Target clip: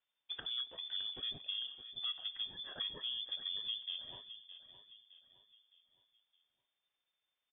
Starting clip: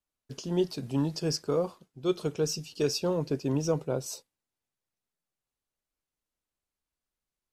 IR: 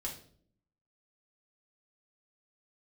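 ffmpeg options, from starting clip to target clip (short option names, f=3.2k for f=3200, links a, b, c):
-af "bandreject=f=56.55:t=h:w=4,bandreject=f=113.1:t=h:w=4,bandreject=f=169.65:t=h:w=4,bandreject=f=226.2:t=h:w=4,bandreject=f=282.75:t=h:w=4,bandreject=f=339.3:t=h:w=4,bandreject=f=395.85:t=h:w=4,bandreject=f=452.4:t=h:w=4,bandreject=f=508.95:t=h:w=4,bandreject=f=565.5:t=h:w=4,bandreject=f=622.05:t=h:w=4,bandreject=f=678.6:t=h:w=4,acompressor=threshold=-43dB:ratio=6,asetrate=30296,aresample=44100,atempo=1.45565,lowpass=f=3.1k:t=q:w=0.5098,lowpass=f=3.1k:t=q:w=0.6013,lowpass=f=3.1k:t=q:w=0.9,lowpass=f=3.1k:t=q:w=2.563,afreqshift=-3600,aecho=1:1:614|1228|1842|2456:0.237|0.0972|0.0399|0.0163,volume=3.5dB"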